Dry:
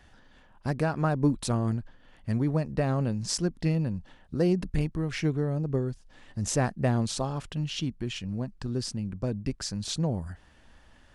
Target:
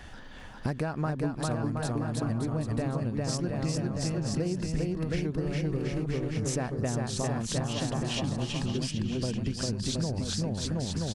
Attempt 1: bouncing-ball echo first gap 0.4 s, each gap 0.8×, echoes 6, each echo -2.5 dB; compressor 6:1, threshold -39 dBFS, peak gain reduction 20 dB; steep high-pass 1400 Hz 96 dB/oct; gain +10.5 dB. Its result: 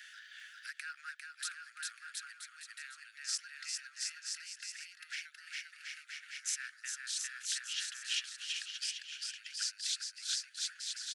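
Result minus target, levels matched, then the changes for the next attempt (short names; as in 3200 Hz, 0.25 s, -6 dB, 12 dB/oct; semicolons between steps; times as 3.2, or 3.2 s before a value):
1000 Hz band -8.5 dB
remove: steep high-pass 1400 Hz 96 dB/oct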